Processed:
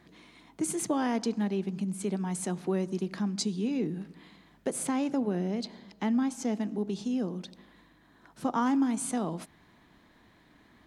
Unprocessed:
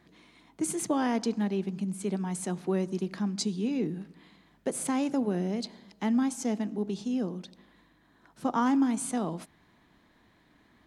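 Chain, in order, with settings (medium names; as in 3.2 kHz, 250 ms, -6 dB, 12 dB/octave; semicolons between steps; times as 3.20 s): 4.85–6.53 s: peaking EQ 10 kHz -6 dB 1.3 oct; in parallel at -0.5 dB: compression, threshold -36 dBFS, peak gain reduction 14 dB; on the sum: trim -3 dB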